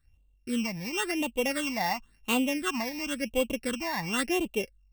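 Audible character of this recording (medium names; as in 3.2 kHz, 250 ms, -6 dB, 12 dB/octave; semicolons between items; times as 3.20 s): a buzz of ramps at a fixed pitch in blocks of 16 samples; phasing stages 8, 0.95 Hz, lowest notch 390–1700 Hz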